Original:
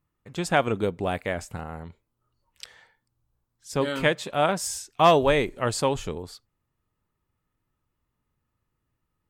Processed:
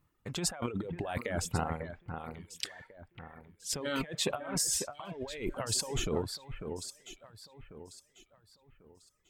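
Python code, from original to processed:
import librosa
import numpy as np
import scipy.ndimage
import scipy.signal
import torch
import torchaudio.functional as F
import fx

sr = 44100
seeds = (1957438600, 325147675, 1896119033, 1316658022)

y = fx.over_compress(x, sr, threshold_db=-33.0, ratio=-1.0)
y = fx.echo_alternate(y, sr, ms=547, hz=2200.0, feedback_pct=55, wet_db=-6.5)
y = fx.dereverb_blind(y, sr, rt60_s=1.5)
y = y * 10.0 ** (-2.0 / 20.0)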